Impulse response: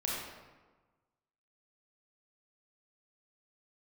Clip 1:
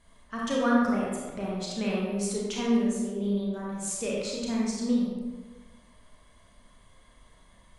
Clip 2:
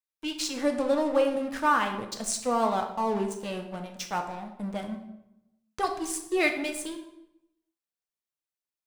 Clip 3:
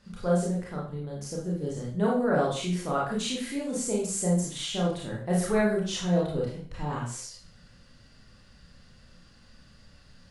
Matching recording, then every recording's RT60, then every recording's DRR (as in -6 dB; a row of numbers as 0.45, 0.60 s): 1; 1.3, 0.85, 0.45 s; -5.0, 3.5, -4.5 dB